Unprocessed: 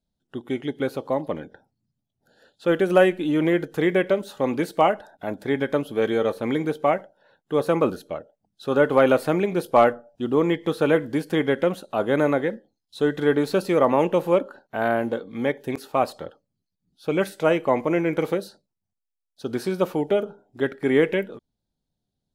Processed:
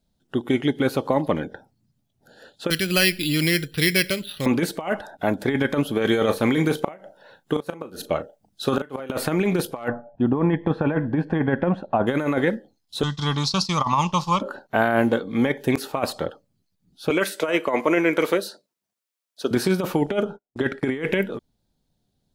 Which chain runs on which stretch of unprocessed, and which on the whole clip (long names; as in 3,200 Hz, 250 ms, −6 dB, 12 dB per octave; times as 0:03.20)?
0:02.70–0:04.46: drawn EQ curve 130 Hz 0 dB, 230 Hz −10 dB, 590 Hz −18 dB, 870 Hz −21 dB, 2,500 Hz +4 dB, 6,400 Hz +12 dB + bad sample-rate conversion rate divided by 6×, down filtered, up hold
0:06.06–0:09.10: high-shelf EQ 4,000 Hz +4.5 dB + gate with flip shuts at −11 dBFS, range −28 dB + double-tracking delay 37 ms −13 dB
0:09.88–0:12.07: low-pass filter 1,300 Hz + comb filter 1.2 ms, depth 40%
0:13.03–0:14.42: downward expander −28 dBFS + drawn EQ curve 140 Hz 0 dB, 200 Hz −5 dB, 310 Hz −19 dB, 490 Hz −25 dB, 1,100 Hz +5 dB, 1,600 Hz −17 dB, 5,300 Hz +15 dB, 13,000 Hz −17 dB
0:17.10–0:19.51: high-pass filter 340 Hz + notch filter 800 Hz, Q 7.1
0:20.06–0:21.04: low-pass filter 9,600 Hz + noise gate −49 dBFS, range −41 dB
whole clip: dynamic equaliser 500 Hz, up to −5 dB, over −31 dBFS, Q 0.99; compressor whose output falls as the input rises −26 dBFS, ratio −0.5; level +7 dB